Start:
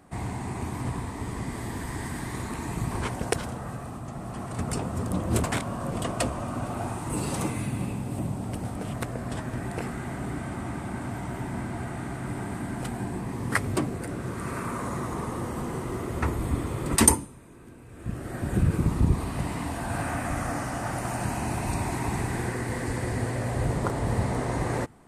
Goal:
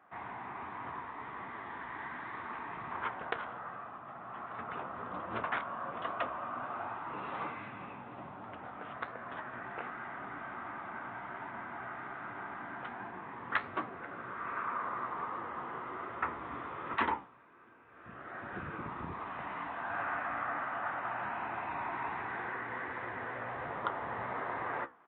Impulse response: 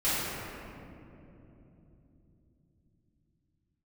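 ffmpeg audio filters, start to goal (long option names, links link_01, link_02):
-af "bandpass=frequency=1300:width_type=q:width=1.8:csg=0,aresample=8000,asoftclip=type=hard:threshold=-22dB,aresample=44100,flanger=delay=8.5:depth=9.2:regen=66:speed=1.3:shape=triangular,volume=5.5dB"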